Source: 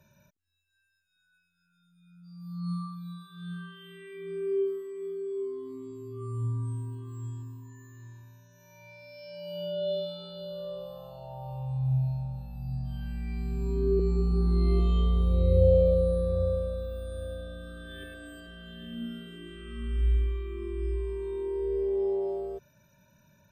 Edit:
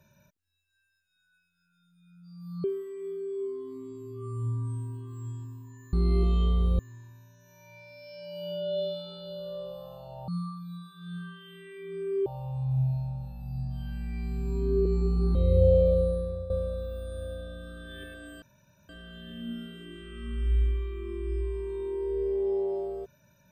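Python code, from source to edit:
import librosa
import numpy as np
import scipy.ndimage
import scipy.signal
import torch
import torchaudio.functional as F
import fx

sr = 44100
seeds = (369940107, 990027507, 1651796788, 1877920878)

y = fx.edit(x, sr, fx.move(start_s=2.64, length_s=1.98, to_s=11.4),
    fx.move(start_s=14.49, length_s=0.86, to_s=7.91),
    fx.fade_out_to(start_s=16.01, length_s=0.49, floor_db=-13.0),
    fx.insert_room_tone(at_s=18.42, length_s=0.47), tone=tone)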